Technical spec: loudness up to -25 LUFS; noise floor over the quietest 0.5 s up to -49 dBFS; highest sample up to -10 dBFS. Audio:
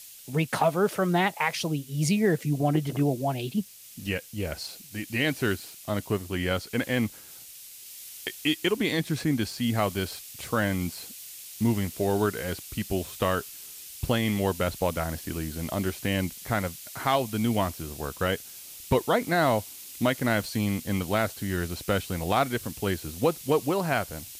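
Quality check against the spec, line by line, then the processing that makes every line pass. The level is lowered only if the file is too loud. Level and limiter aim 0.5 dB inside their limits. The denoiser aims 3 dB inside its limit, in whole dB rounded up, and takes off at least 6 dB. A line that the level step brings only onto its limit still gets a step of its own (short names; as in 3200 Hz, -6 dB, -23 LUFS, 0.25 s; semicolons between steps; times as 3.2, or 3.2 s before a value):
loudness -28.0 LUFS: OK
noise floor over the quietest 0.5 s -46 dBFS: fail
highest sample -11.5 dBFS: OK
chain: denoiser 6 dB, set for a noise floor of -46 dBFS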